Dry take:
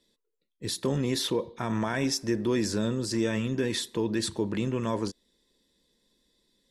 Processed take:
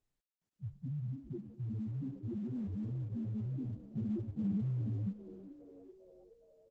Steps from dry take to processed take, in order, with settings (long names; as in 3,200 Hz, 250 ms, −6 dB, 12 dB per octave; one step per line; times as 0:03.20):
running median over 15 samples
treble cut that deepens with the level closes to 470 Hz, closed at −28.5 dBFS
guitar amp tone stack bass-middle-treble 6-0-2
spectral peaks only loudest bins 1
hum removal 139.8 Hz, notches 40
brickwall limiter −55.5 dBFS, peak gain reduction 9.5 dB
automatic gain control gain up to 7.5 dB
parametric band 4,200 Hz +7.5 dB 0.72 octaves, from 0:02.58 1,200 Hz, from 0:03.75 170 Hz
echo with shifted repeats 407 ms, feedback 56%, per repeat +85 Hz, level −16 dB
level +13.5 dB
Opus 10 kbit/s 48,000 Hz